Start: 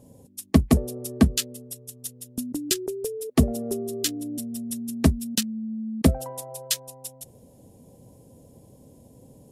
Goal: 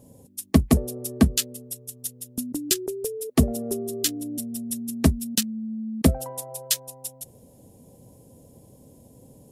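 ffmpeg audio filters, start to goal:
ffmpeg -i in.wav -af "highshelf=frequency=8900:gain=5.5" out.wav

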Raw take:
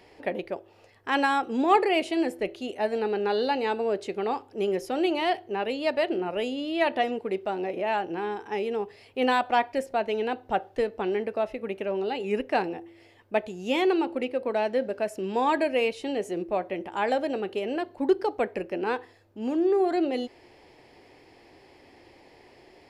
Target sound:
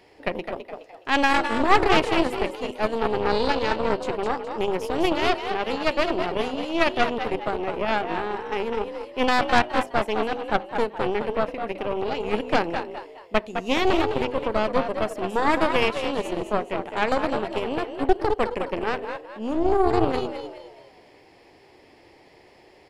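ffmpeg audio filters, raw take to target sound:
ffmpeg -i in.wav -filter_complex "[0:a]bandreject=frequency=50:width_type=h:width=6,bandreject=frequency=100:width_type=h:width=6,bandreject=frequency=150:width_type=h:width=6,bandreject=frequency=200:width_type=h:width=6,bandreject=frequency=250:width_type=h:width=6,asplit=6[link_01][link_02][link_03][link_04][link_05][link_06];[link_02]adelay=209,afreqshift=55,volume=-5.5dB[link_07];[link_03]adelay=418,afreqshift=110,volume=-13.5dB[link_08];[link_04]adelay=627,afreqshift=165,volume=-21.4dB[link_09];[link_05]adelay=836,afreqshift=220,volume=-29.4dB[link_10];[link_06]adelay=1045,afreqshift=275,volume=-37.3dB[link_11];[link_01][link_07][link_08][link_09][link_10][link_11]amix=inputs=6:normalize=0,aeval=exprs='0.355*(cos(1*acos(clip(val(0)/0.355,-1,1)))-cos(1*PI/2))+0.141*(cos(4*acos(clip(val(0)/0.355,-1,1)))-cos(4*PI/2))':channel_layout=same" out.wav

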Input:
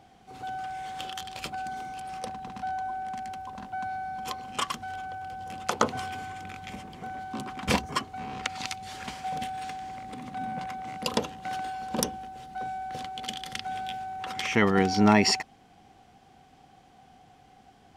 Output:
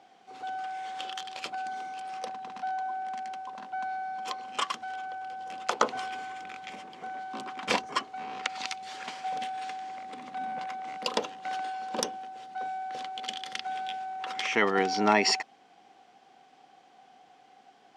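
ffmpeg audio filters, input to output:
ffmpeg -i in.wav -af "highpass=360,lowpass=6800" out.wav

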